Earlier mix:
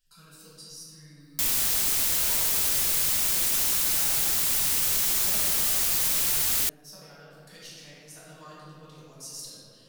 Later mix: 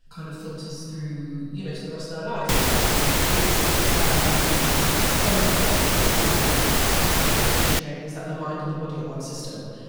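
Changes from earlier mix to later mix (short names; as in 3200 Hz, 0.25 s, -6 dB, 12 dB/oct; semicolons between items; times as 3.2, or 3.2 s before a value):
background: entry +1.10 s; master: remove pre-emphasis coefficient 0.9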